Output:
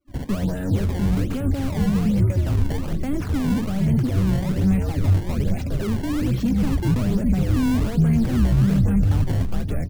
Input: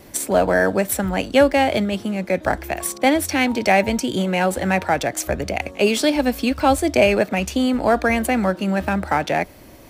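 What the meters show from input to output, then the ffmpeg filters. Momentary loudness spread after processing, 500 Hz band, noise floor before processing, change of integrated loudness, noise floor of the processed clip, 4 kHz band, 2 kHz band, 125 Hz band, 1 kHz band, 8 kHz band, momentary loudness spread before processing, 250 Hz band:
6 LU, −13.5 dB, −43 dBFS, −2.0 dB, −28 dBFS, −11.5 dB, −15.5 dB, +11.0 dB, −16.0 dB, −13.5 dB, 7 LU, 0.0 dB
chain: -filter_complex "[0:a]flanger=delay=3.3:depth=4.4:regen=58:speed=0.59:shape=sinusoidal,asplit=2[link_01][link_02];[link_02]asplit=6[link_03][link_04][link_05][link_06][link_07][link_08];[link_03]adelay=411,afreqshift=-96,volume=-5dB[link_09];[link_04]adelay=822,afreqshift=-192,volume=-11.7dB[link_10];[link_05]adelay=1233,afreqshift=-288,volume=-18.5dB[link_11];[link_06]adelay=1644,afreqshift=-384,volume=-25.2dB[link_12];[link_07]adelay=2055,afreqshift=-480,volume=-32dB[link_13];[link_08]adelay=2466,afreqshift=-576,volume=-38.7dB[link_14];[link_09][link_10][link_11][link_12][link_13][link_14]amix=inputs=6:normalize=0[link_15];[link_01][link_15]amix=inputs=2:normalize=0,agate=range=-11dB:threshold=-47dB:ratio=16:detection=peak,highshelf=frequency=8000:gain=6,asoftclip=type=hard:threshold=-24dB,acrossover=split=370[link_16][link_17];[link_17]acompressor=threshold=-39dB:ratio=3[link_18];[link_16][link_18]amix=inputs=2:normalize=0,afftdn=noise_reduction=34:noise_floor=-46,acrusher=samples=20:mix=1:aa=0.000001:lfo=1:lforange=32:lforate=1.2,bass=frequency=250:gain=15,treble=frequency=4000:gain=0"

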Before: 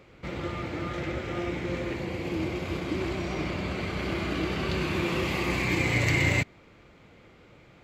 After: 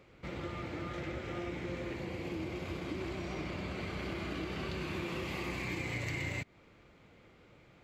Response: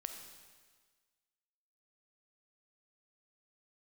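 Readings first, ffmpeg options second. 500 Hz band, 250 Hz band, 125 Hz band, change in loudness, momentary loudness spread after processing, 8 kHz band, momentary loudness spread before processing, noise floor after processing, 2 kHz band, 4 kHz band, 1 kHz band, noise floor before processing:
−9.0 dB, −9.0 dB, −10.0 dB, −10.0 dB, 4 LU, −11.0 dB, 9 LU, −61 dBFS, −11.0 dB, −10.0 dB, −9.0 dB, −55 dBFS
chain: -af "acompressor=threshold=-29dB:ratio=4,volume=-6dB"

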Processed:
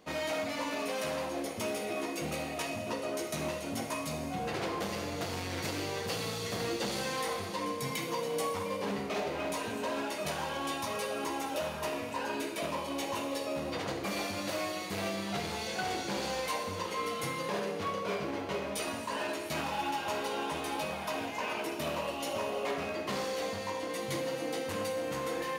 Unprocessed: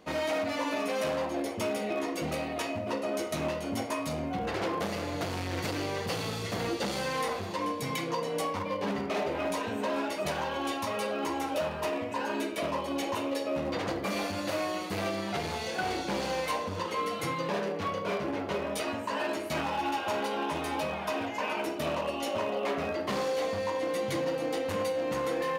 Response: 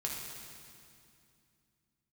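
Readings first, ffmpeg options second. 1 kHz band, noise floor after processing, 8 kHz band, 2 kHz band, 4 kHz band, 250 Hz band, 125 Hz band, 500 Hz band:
−3.0 dB, −39 dBFS, +1.5 dB, −2.0 dB, −0.5 dB, −4.0 dB, −3.0 dB, −4.0 dB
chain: -filter_complex "[0:a]asplit=2[link_01][link_02];[link_02]highshelf=frequency=2500:gain=11.5[link_03];[1:a]atrim=start_sample=2205[link_04];[link_03][link_04]afir=irnorm=-1:irlink=0,volume=-7.5dB[link_05];[link_01][link_05]amix=inputs=2:normalize=0,volume=-6.5dB"

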